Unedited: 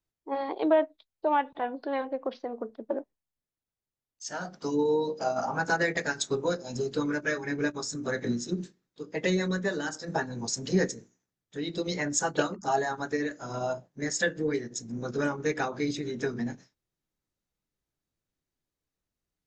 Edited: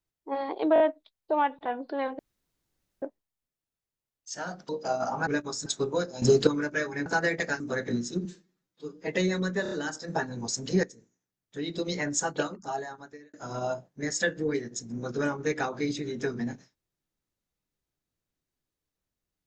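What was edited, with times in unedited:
0.74 s: stutter 0.02 s, 4 plays
2.13–2.96 s: room tone
4.63–5.05 s: delete
5.63–6.17 s: swap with 7.57–7.96 s
6.73–6.98 s: gain +11 dB
8.61–9.16 s: stretch 1.5×
9.71 s: stutter 0.03 s, 4 plays
10.83–11.57 s: fade in, from -18 dB
12.08–13.33 s: fade out

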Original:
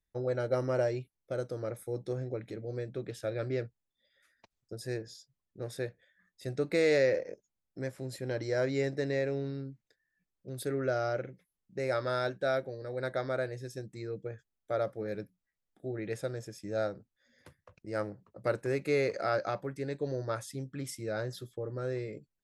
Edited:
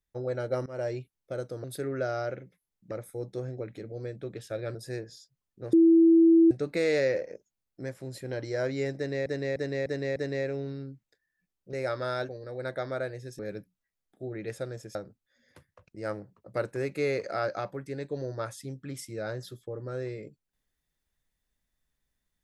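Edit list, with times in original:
0.66–0.91 s: fade in, from -21 dB
3.48–4.73 s: delete
5.71–6.49 s: bleep 330 Hz -15 dBFS
8.94–9.24 s: loop, 5 plays
10.51–11.78 s: move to 1.64 s
12.34–12.67 s: delete
13.77–15.02 s: delete
16.58–16.85 s: delete

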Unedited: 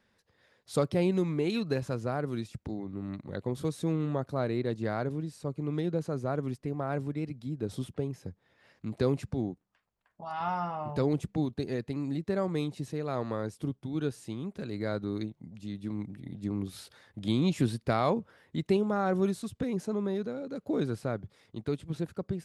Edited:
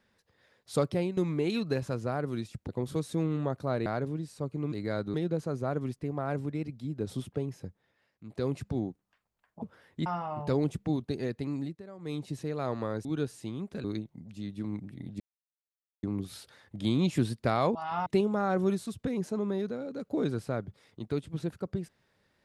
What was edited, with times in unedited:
0.80–1.17 s: fade out equal-power, to -13 dB
2.69–3.38 s: delete
4.55–4.90 s: delete
8.24–9.28 s: dip -14 dB, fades 0.46 s
10.24–10.55 s: swap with 18.18–18.62 s
12.06–12.72 s: dip -17 dB, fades 0.25 s
13.54–13.89 s: delete
14.68–15.10 s: move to 5.76 s
16.46 s: insert silence 0.83 s

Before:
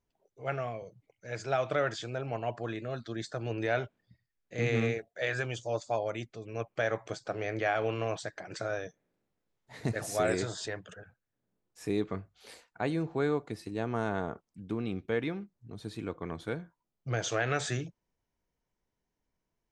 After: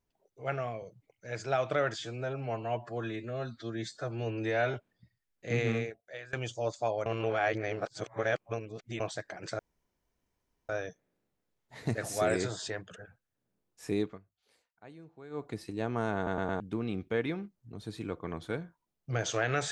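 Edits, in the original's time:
1.98–3.82 s: stretch 1.5×
4.62–5.41 s: fade out, to -22 dB
6.14–8.08 s: reverse
8.67 s: insert room tone 1.10 s
11.98–13.47 s: dip -19.5 dB, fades 0.19 s
14.14 s: stutter in place 0.11 s, 4 plays

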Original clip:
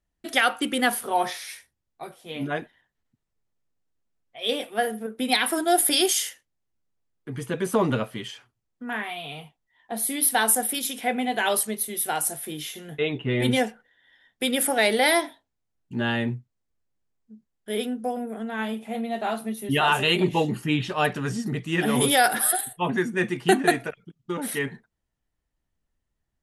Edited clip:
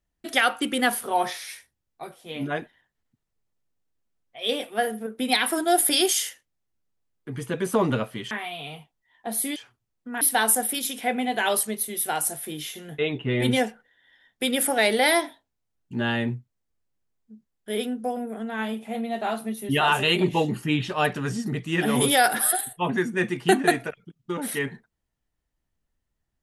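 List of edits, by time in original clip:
8.31–8.96 s: move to 10.21 s

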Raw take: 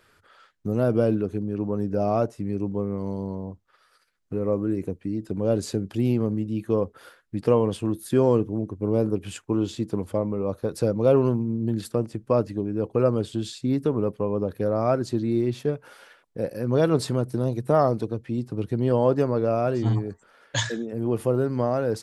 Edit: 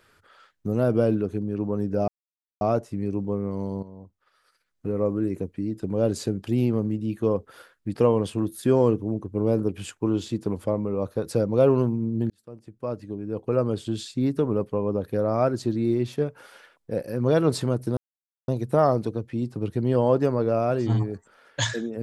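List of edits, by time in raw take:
2.08 s: insert silence 0.53 s
3.30–4.37 s: fade in, from -13 dB
11.77–13.41 s: fade in
17.44 s: insert silence 0.51 s

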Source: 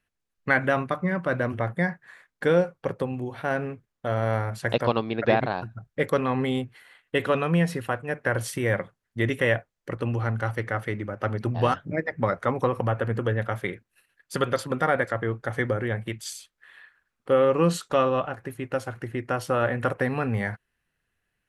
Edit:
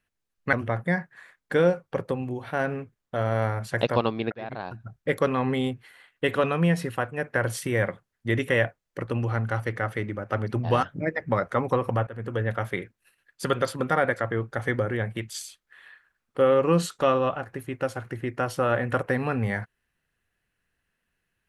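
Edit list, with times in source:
0.53–1.44 s: delete
5.23–5.85 s: fade in
12.98–13.41 s: fade in, from -17 dB

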